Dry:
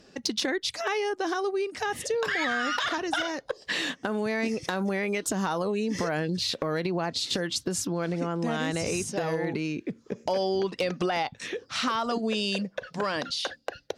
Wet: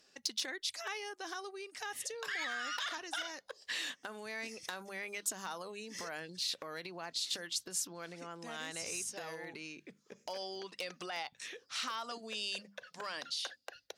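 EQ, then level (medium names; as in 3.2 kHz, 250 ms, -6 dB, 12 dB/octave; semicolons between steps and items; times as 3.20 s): pre-emphasis filter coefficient 0.97; treble shelf 2.7 kHz -11 dB; hum notches 50/100/150/200 Hz; +5.5 dB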